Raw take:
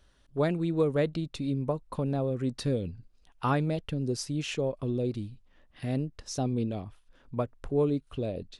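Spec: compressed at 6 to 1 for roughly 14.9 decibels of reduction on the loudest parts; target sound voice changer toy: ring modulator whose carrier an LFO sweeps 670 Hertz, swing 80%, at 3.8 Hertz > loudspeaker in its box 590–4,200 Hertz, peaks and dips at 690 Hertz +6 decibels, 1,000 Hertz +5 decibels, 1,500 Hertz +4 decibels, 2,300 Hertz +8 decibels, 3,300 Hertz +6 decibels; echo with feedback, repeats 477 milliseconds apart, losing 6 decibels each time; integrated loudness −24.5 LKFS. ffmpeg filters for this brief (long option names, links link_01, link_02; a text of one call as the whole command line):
ffmpeg -i in.wav -af "acompressor=threshold=-38dB:ratio=6,aecho=1:1:477|954|1431|1908|2385|2862:0.501|0.251|0.125|0.0626|0.0313|0.0157,aeval=exprs='val(0)*sin(2*PI*670*n/s+670*0.8/3.8*sin(2*PI*3.8*n/s))':channel_layout=same,highpass=590,equalizer=frequency=690:width_type=q:width=4:gain=6,equalizer=frequency=1000:width_type=q:width=4:gain=5,equalizer=frequency=1500:width_type=q:width=4:gain=4,equalizer=frequency=2300:width_type=q:width=4:gain=8,equalizer=frequency=3300:width_type=q:width=4:gain=6,lowpass=frequency=4200:width=0.5412,lowpass=frequency=4200:width=1.3066,volume=17.5dB" out.wav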